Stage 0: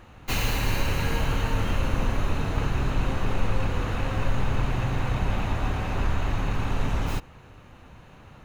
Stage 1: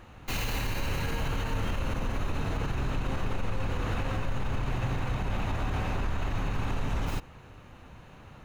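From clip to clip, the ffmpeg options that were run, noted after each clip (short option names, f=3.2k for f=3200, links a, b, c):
-af "alimiter=limit=-20.5dB:level=0:latency=1:release=48,volume=-1dB"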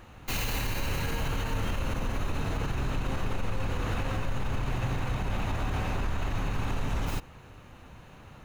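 -af "highshelf=f=6.3k:g=5"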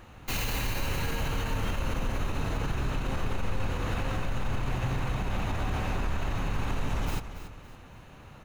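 -af "aecho=1:1:281|562|843|1124:0.251|0.0929|0.0344|0.0127"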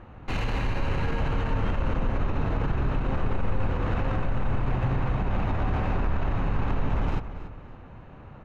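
-af "adynamicsmooth=sensitivity=1.5:basefreq=1.8k,volume=4.5dB"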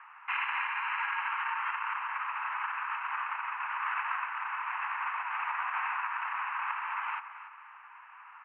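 -af "asuperpass=centerf=1600:order=12:qfactor=0.87,volume=5.5dB"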